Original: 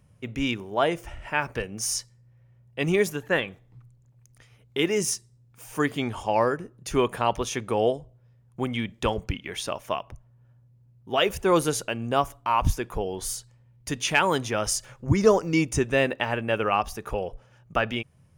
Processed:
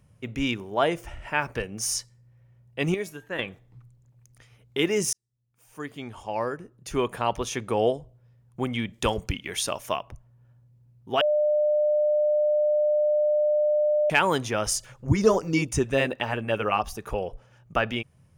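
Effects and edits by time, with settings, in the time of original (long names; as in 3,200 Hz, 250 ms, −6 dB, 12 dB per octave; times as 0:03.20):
0:02.94–0:03.39: tuned comb filter 320 Hz, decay 0.32 s, mix 70%
0:05.13–0:07.76: fade in
0:08.93–0:09.97: parametric band 11,000 Hz +8.5 dB 2.2 octaves
0:11.21–0:14.10: beep over 600 Hz −19 dBFS
0:14.78–0:17.08: auto-filter notch sine 7 Hz 280–2,300 Hz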